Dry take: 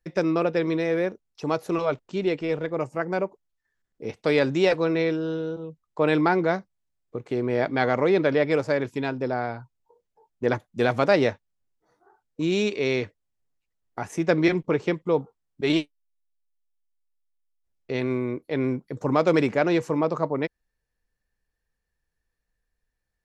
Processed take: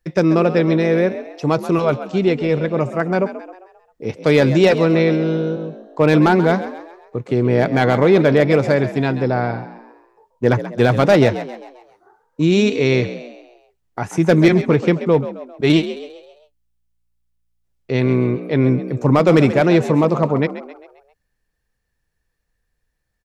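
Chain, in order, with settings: hard clip -12.5 dBFS, distortion -21 dB; dynamic EQ 130 Hz, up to +8 dB, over -41 dBFS, Q 0.9; frequency-shifting echo 0.133 s, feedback 46%, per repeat +58 Hz, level -13 dB; gain +6.5 dB

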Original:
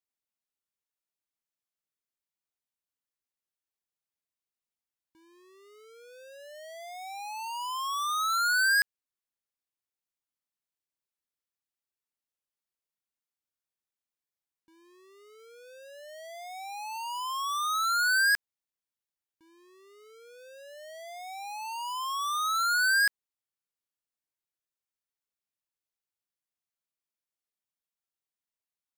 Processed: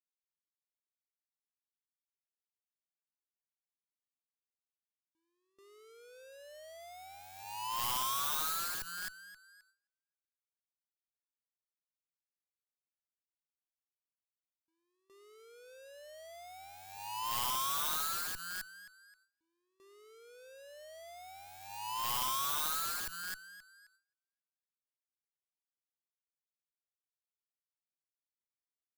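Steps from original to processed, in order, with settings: thinning echo 0.263 s, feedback 31%, high-pass 340 Hz, level -12.5 dB; gate with hold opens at -54 dBFS; in parallel at +1 dB: limiter -30.5 dBFS, peak gain reduction 10.5 dB; on the sum: downsampling 32000 Hz; added harmonics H 4 -25 dB, 7 -14 dB, 8 -43 dB, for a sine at -16.5 dBFS; wrapped overs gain 25.5 dB; high shelf 9200 Hz +4.5 dB; soft clip -27.5 dBFS, distortion -13 dB; bell 1900 Hz -4 dB 0.27 oct; gain -3 dB

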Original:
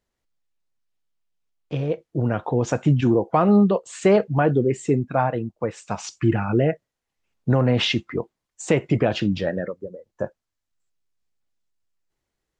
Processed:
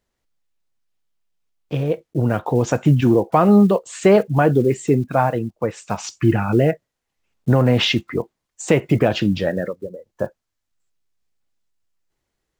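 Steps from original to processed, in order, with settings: block floating point 7-bit; gain +3.5 dB

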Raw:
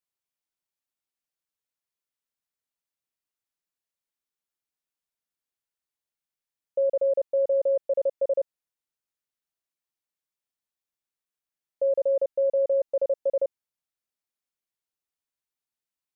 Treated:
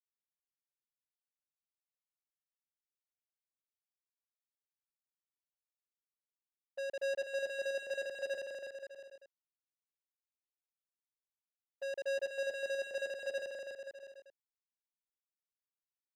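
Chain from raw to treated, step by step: gate -25 dBFS, range -25 dB; HPF 490 Hz 24 dB/oct; sample leveller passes 2; limiter -29 dBFS, peak gain reduction 9 dB; AGC gain up to 7 dB; soft clip -32.5 dBFS, distortion -13 dB; bouncing-ball echo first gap 0.25 s, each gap 0.8×, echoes 5; gain -5 dB

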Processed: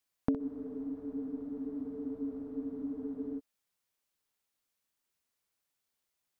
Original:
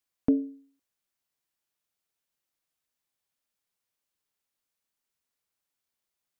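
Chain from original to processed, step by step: compressor, threshold -28 dBFS, peak gain reduction 9.5 dB; flutter echo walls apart 10.9 m, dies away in 0.32 s; spectral freeze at 0.41, 2.96 s; gain +1 dB

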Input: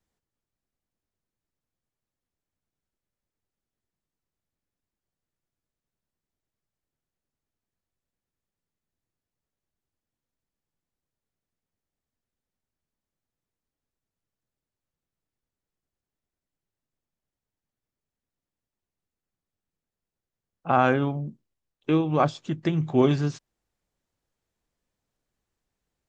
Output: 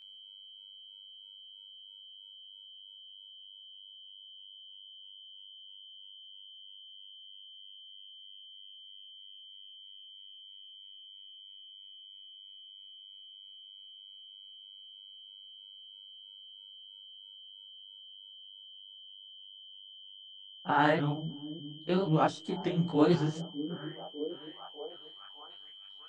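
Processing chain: repeated pitch sweeps +3.5 st, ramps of 0.538 s; whine 3100 Hz -46 dBFS; on a send: delay with a stepping band-pass 0.602 s, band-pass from 230 Hz, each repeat 0.7 oct, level -9.5 dB; on the sum: detuned doubles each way 55 cents

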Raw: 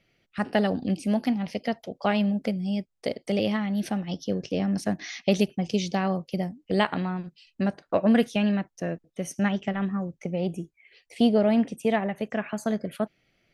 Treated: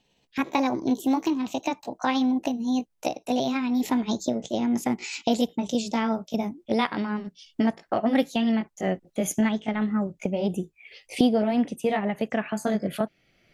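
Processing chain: gliding pitch shift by +5 st ending unshifted; recorder AGC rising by 11 dB/s

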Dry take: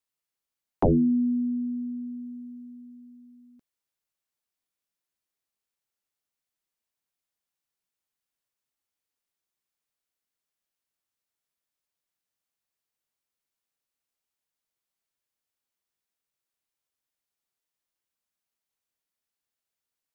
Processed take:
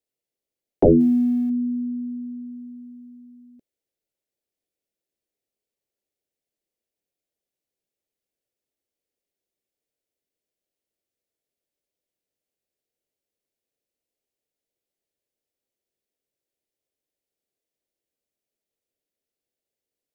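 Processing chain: 1–1.5 G.711 law mismatch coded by A; EQ curve 180 Hz 0 dB, 410 Hz +8 dB, 590 Hz +6 dB, 1100 Hz -15 dB, 2000 Hz -5 dB; gain +2.5 dB

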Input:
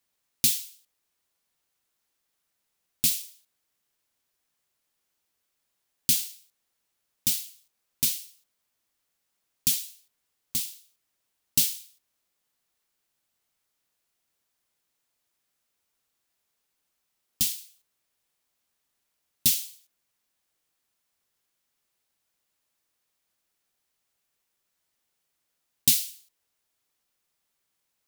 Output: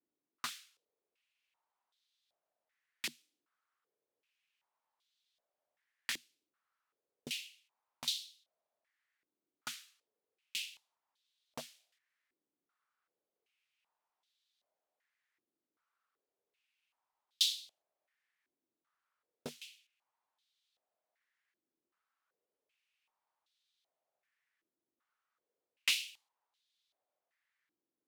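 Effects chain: wavefolder -12.5 dBFS; stepped band-pass 2.6 Hz 320–3700 Hz; gain +7 dB

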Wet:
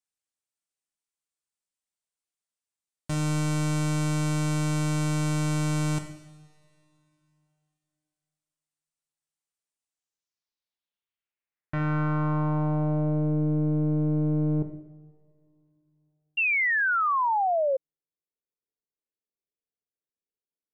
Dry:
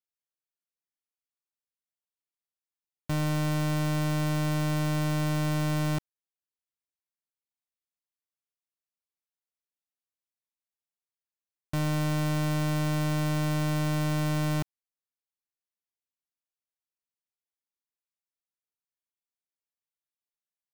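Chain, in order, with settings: two-slope reverb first 0.93 s, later 3.1 s, from -19 dB, DRR 6 dB; low-pass sweep 8700 Hz -> 440 Hz, 9.84–13.43; painted sound fall, 16.37–17.77, 520–2800 Hz -23 dBFS; gain -1 dB

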